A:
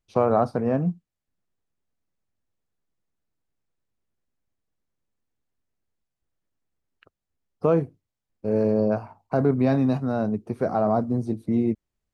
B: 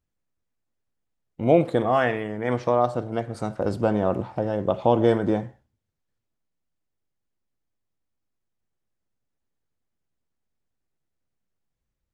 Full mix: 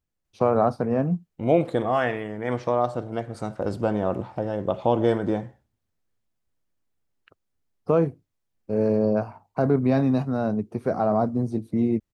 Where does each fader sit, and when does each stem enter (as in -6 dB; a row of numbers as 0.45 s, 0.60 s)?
0.0 dB, -2.0 dB; 0.25 s, 0.00 s